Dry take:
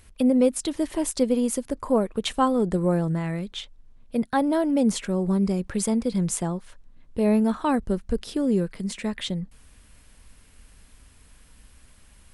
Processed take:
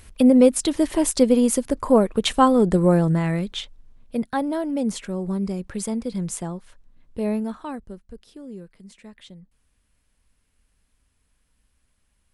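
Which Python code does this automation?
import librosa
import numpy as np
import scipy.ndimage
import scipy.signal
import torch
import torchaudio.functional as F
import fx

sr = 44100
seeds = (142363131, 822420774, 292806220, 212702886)

y = fx.gain(x, sr, db=fx.line((3.38, 5.5), (4.57, -3.0), (7.25, -3.0), (8.09, -15.5)))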